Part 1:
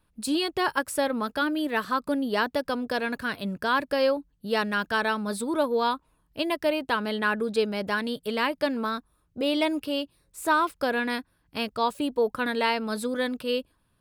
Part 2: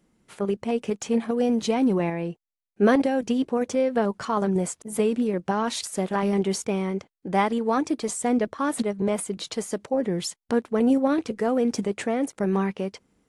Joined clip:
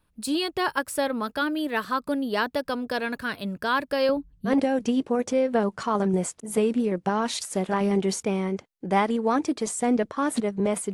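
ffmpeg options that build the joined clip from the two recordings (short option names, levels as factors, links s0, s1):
-filter_complex "[0:a]asettb=1/sr,asplit=3[s0][s1][s2];[s0]atrim=end=4.094[s3];[s1]atrim=start=4.09:end=4.55,asetpts=PTS-STARTPTS,afade=t=in:d=0.004:c=qsin,afade=t=out:st=0.456:d=0.004:c=qsin,bass=f=250:g=13,treble=f=4000:g=-3[s4];[s2]atrim=start=4.546[s5];[s3][s4]acrossfade=d=0.004:c1=hsin:c2=qsin[s6];[s6][s5]acrossfade=d=0.004:c1=qsin:c2=hsin,apad=whole_dur=10.93,atrim=end=10.93,atrim=end=4.55,asetpts=PTS-STARTPTS[s7];[1:a]atrim=start=2.87:end=9.35,asetpts=PTS-STARTPTS[s8];[s7][s8]acrossfade=d=0.1:c1=tri:c2=tri"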